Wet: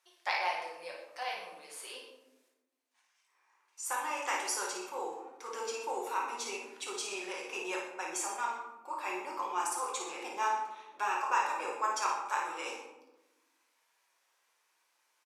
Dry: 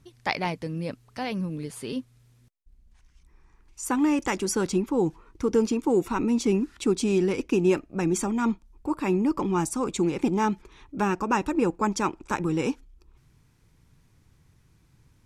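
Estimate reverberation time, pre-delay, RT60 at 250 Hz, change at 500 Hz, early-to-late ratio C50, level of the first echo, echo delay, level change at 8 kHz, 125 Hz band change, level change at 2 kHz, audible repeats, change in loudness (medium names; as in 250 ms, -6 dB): 1.0 s, 5 ms, 1.6 s, -14.5 dB, 1.5 dB, -5.0 dB, 55 ms, -3.0 dB, under -40 dB, -2.5 dB, 1, -9.5 dB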